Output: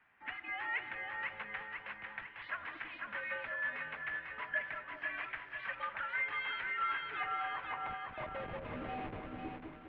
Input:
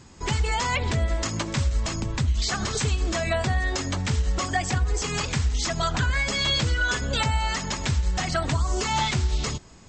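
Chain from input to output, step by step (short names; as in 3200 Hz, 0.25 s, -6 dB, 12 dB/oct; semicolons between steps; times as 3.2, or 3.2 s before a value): band-pass sweep 1900 Hz -> 410 Hz, 6.85–9.39; 7.89–9.27 Schmitt trigger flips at -37 dBFS; on a send: split-band echo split 750 Hz, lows 0.199 s, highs 0.497 s, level -4 dB; on the sum: mistuned SSB -120 Hz 160–3000 Hz; gain -6 dB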